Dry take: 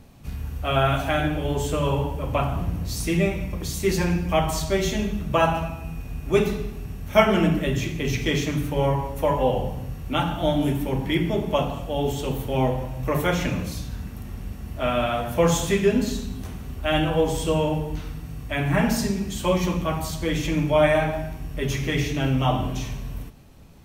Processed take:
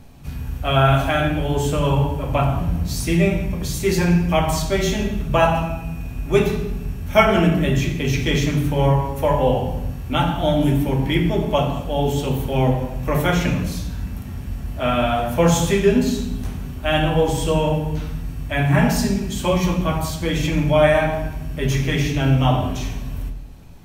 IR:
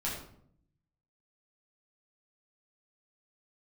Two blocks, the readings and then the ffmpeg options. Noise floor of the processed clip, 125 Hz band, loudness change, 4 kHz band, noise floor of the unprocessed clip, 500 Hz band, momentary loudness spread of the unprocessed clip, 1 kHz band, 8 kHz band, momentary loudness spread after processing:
-31 dBFS, +6.0 dB, +4.0 dB, +3.5 dB, -37 dBFS, +3.5 dB, 13 LU, +4.0 dB, +3.0 dB, 12 LU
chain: -filter_complex "[0:a]asplit=2[s0][s1];[1:a]atrim=start_sample=2205[s2];[s1][s2]afir=irnorm=-1:irlink=0,volume=0.376[s3];[s0][s3]amix=inputs=2:normalize=0,volume=1.12"

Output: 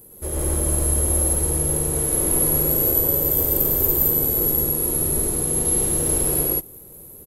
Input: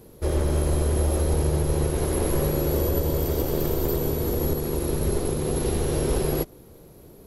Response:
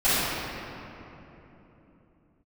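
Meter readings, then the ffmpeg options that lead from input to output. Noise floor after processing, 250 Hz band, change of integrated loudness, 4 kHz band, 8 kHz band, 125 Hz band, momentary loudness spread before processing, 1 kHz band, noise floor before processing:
-43 dBFS, -1.0 dB, +7.0 dB, -1.5 dB, +15.0 dB, -2.0 dB, 3 LU, -1.0 dB, -49 dBFS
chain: -af "aecho=1:1:110.8|166.2:0.891|1,aexciter=amount=5.4:drive=7.1:freq=7400,volume=0.531"

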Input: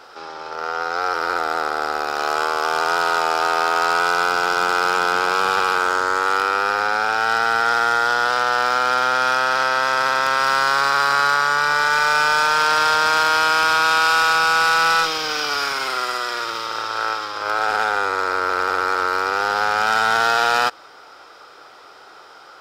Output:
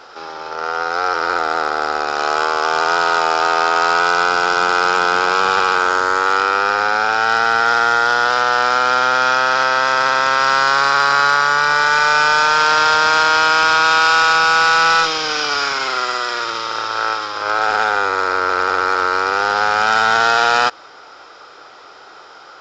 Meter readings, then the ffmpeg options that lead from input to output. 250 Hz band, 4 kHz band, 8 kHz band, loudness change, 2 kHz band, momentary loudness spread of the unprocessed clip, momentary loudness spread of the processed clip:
+3.5 dB, +3.5 dB, +2.5 dB, +3.5 dB, +3.5 dB, 7 LU, 7 LU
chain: -af "aresample=16000,aresample=44100,volume=1.5"

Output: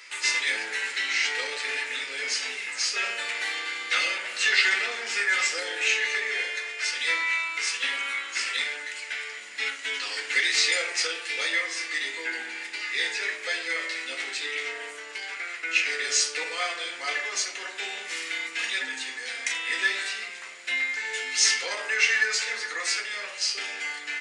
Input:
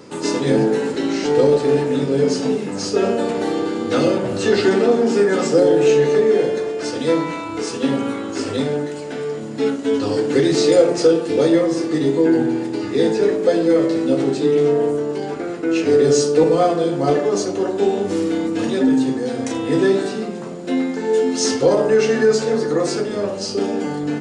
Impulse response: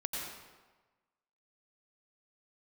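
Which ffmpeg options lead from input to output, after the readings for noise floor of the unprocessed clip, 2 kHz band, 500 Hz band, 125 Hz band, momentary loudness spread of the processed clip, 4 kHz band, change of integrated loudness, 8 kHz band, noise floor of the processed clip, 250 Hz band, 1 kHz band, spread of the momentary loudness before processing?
-28 dBFS, +6.5 dB, -26.0 dB, under -40 dB, 11 LU, +3.0 dB, -8.0 dB, +1.0 dB, -40 dBFS, -33.5 dB, -11.0 dB, 9 LU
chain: -af "highpass=f=2100:t=q:w=3.7"

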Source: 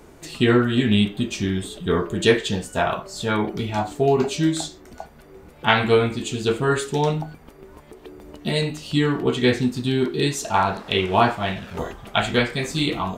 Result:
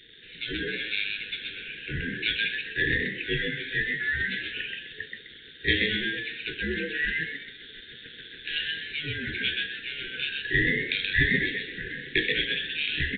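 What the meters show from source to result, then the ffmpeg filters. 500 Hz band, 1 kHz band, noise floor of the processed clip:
-16.0 dB, under -30 dB, -48 dBFS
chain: -filter_complex "[0:a]afftfilt=real='real(if(lt(b,960),b+48*(1-2*mod(floor(b/48),2)),b),0)':imag='imag(if(lt(b,960),b+48*(1-2*mod(floor(b/48),2)),b),0)':win_size=2048:overlap=0.75,equalizer=f=380:w=2.3:g=3.5,acrossover=split=270|1700[s0][s1][s2];[s1]acompressor=threshold=0.0355:ratio=12[s3];[s0][s3][s2]amix=inputs=3:normalize=0,aeval=exprs='val(0)+0.0282*sin(2*PI*1200*n/s)':c=same,acrusher=bits=5:mix=0:aa=0.000001,asplit=5[s4][s5][s6][s7][s8];[s5]adelay=128,afreqshift=120,volume=0.708[s9];[s6]adelay=256,afreqshift=240,volume=0.234[s10];[s7]adelay=384,afreqshift=360,volume=0.0767[s11];[s8]adelay=512,afreqshift=480,volume=0.0254[s12];[s4][s9][s10][s11][s12]amix=inputs=5:normalize=0,dynaudnorm=f=410:g=3:m=1.78,asuperstop=centerf=910:order=20:qfactor=0.8,aresample=8000,aresample=44100,volume=0.562"

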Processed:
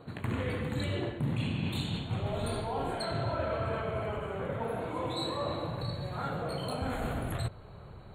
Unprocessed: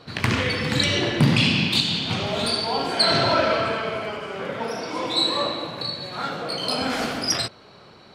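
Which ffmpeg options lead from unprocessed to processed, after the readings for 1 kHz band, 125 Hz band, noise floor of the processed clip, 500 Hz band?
-10.0 dB, -6.5 dB, -48 dBFS, -8.5 dB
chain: -af "asubboost=boost=9.5:cutoff=82,asuperstop=centerf=5400:order=20:qfactor=2.4,equalizer=f=4000:w=0.39:g=-14,areverse,acompressor=threshold=0.0316:ratio=5,areverse"

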